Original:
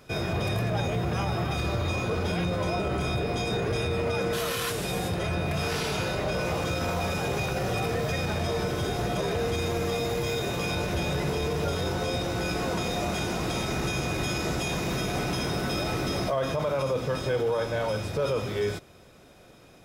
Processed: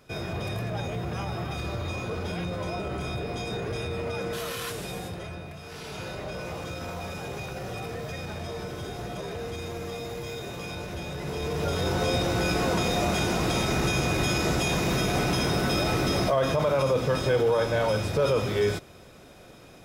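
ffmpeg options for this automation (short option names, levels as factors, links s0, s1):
-af "volume=5.31,afade=t=out:st=4.73:d=0.89:silence=0.281838,afade=t=in:st=5.62:d=0.45:silence=0.398107,afade=t=in:st=11.18:d=0.89:silence=0.298538"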